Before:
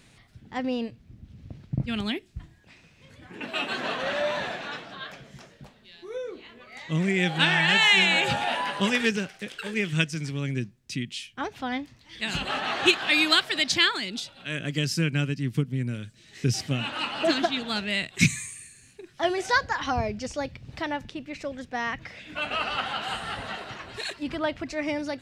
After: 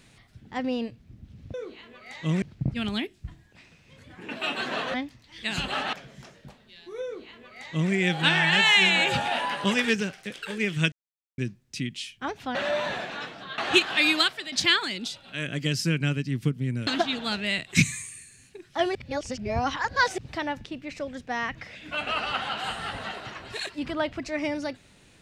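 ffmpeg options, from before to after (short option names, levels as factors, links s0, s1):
-filter_complex "[0:a]asplit=13[s0][s1][s2][s3][s4][s5][s6][s7][s8][s9][s10][s11][s12];[s0]atrim=end=1.542[s13];[s1]atrim=start=6.198:end=7.082[s14];[s2]atrim=start=1.538:end=4.062[s15];[s3]atrim=start=11.708:end=12.702[s16];[s4]atrim=start=5.088:end=10.08,asetpts=PTS-STARTPTS,afade=t=out:st=4.988:d=0.004:c=hsin[s17];[s5]atrim=start=10.08:end=10.54,asetpts=PTS-STARTPTS,volume=0[s18];[s6]atrim=start=10.54:end=11.712,asetpts=PTS-STARTPTS,afade=t=in:d=0.004:c=hsin[s19];[s7]atrim=start=4.058:end=5.092[s20];[s8]atrim=start=12.698:end=13.64,asetpts=PTS-STARTPTS,afade=t=out:st=0.542:d=0.4:silence=0.188365[s21];[s9]atrim=start=13.64:end=15.992,asetpts=PTS-STARTPTS,afade=t=in:d=0.004:c=hsin:silence=0.188365[s22];[s10]atrim=start=17.308:end=19.392[s23];[s11]atrim=start=19.388:end=20.622,asetpts=PTS-STARTPTS,areverse[s24];[s12]atrim=start=20.618[s25];[s13][s14]acrossfade=d=0.004:c1=hsin:c2=hsin[s26];[s26][s15]acrossfade=d=0.004:c1=hsin:c2=hsin[s27];[s27][s16]acrossfade=d=0.004:c1=hsin:c2=hsin[s28];[s17][s18][s19]concat=n=3:v=0:a=1[s29];[s28][s29]acrossfade=d=0.004:c1=hsin:c2=hsin[s30];[s30][s20]acrossfade=d=0.004:c1=hsin:c2=hsin[s31];[s21][s22]concat=n=2:v=0:a=1[s32];[s31][s32]acrossfade=d=0.004:c1=hsin:c2=hsin[s33];[s33][s23]acrossfade=d=0.004:c1=hsin:c2=hsin[s34];[s34][s24]acrossfade=d=0.004:c1=hsin:c2=hsin[s35];[s35][s25]acrossfade=d=0.004:c1=hsin:c2=hsin"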